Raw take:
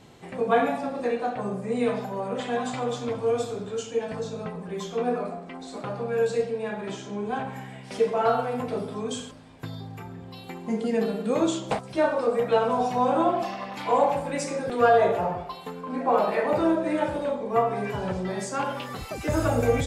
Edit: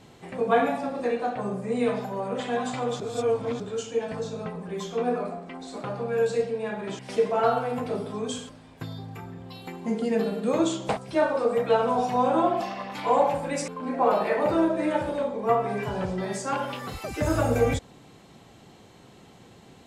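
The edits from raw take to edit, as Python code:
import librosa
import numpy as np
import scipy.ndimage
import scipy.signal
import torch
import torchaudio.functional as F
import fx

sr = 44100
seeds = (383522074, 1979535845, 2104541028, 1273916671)

y = fx.edit(x, sr, fx.reverse_span(start_s=3.0, length_s=0.6),
    fx.cut(start_s=6.99, length_s=0.82),
    fx.cut(start_s=14.5, length_s=1.25), tone=tone)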